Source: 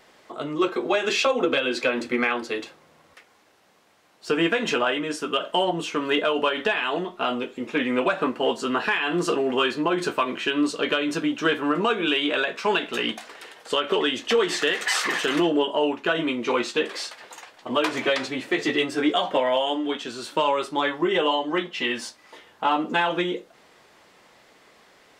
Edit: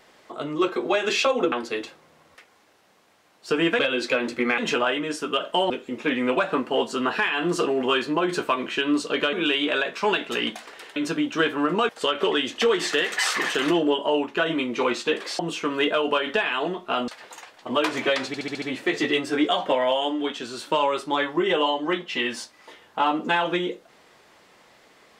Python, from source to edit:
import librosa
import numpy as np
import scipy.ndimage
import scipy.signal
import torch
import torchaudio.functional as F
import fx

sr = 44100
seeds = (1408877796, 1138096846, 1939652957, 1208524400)

y = fx.edit(x, sr, fx.move(start_s=1.52, length_s=0.79, to_s=4.58),
    fx.move(start_s=5.7, length_s=1.69, to_s=17.08),
    fx.move(start_s=11.02, length_s=0.93, to_s=13.58),
    fx.stutter(start_s=18.27, slice_s=0.07, count=6), tone=tone)